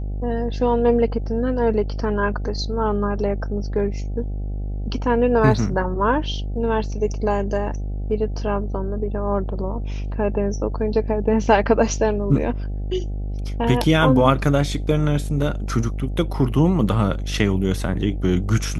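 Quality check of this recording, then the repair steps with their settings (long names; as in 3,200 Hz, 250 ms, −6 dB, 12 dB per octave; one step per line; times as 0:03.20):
mains buzz 50 Hz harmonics 16 −26 dBFS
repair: hum removal 50 Hz, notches 16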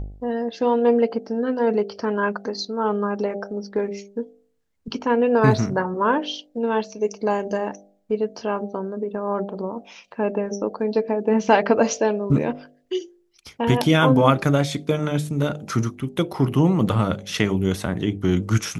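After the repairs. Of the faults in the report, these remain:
none of them is left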